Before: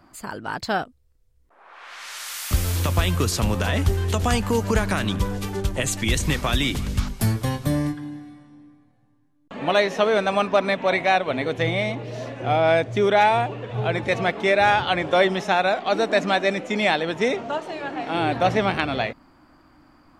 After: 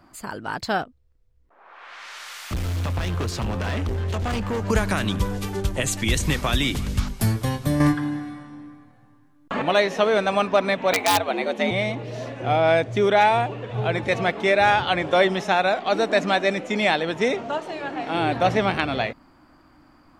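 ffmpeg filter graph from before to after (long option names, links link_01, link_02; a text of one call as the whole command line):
ffmpeg -i in.wav -filter_complex "[0:a]asettb=1/sr,asplit=3[link_01][link_02][link_03];[link_01]atrim=end=0.814[link_04];[link_02]atrim=start=0.81:end=4.7,asetpts=PTS-STARTPTS,afade=type=in:duration=0.004:curve=qsin,afade=type=out:start_time=3.886:duration=0.004:curve=qsin,equalizer=frequency=12000:width=0.45:gain=-14.5,asoftclip=type=hard:threshold=-22.5dB[link_05];[link_03]atrim=start=4.696[link_06];[link_04][link_05]acrossfade=duration=0.004:curve1=hsin:curve2=qsin[link_07];[link_07][link_06]acrossfade=duration=0.004:curve1=qsin:curve2=hsin,asettb=1/sr,asplit=3[link_08][link_09][link_10];[link_08]atrim=end=7.804[link_11];[link_09]atrim=start=7.8:end=9.62,asetpts=PTS-STARTPTS,afade=type=in:duration=0.004:curve=qsin,afade=type=out:start_time=1.816:duration=0.004:curve=qsin,equalizer=frequency=1300:width=1.1:gain=7.5,acontrast=83[link_12];[link_10]atrim=start=9.616[link_13];[link_11][link_12]acrossfade=duration=0.004:curve1=hsin:curve2=qsin[link_14];[link_14][link_13]acrossfade=duration=0.004:curve1=qsin:curve2=hsin,asettb=1/sr,asplit=3[link_15][link_16][link_17];[link_15]atrim=end=10.934[link_18];[link_16]atrim=start=10.93:end=11.71,asetpts=PTS-STARTPTS,afade=type=in:duration=0.004:curve=qsin,afade=type=out:start_time=0.776:duration=0.004:curve=qsin,aeval=exprs='(mod(3.16*val(0)+1,2)-1)/3.16':channel_layout=same,afreqshift=94[link_19];[link_17]atrim=start=11.706[link_20];[link_18][link_19]acrossfade=duration=0.004:curve1=hsin:curve2=qsin[link_21];[link_21][link_20]acrossfade=duration=0.004:curve1=qsin:curve2=hsin" out.wav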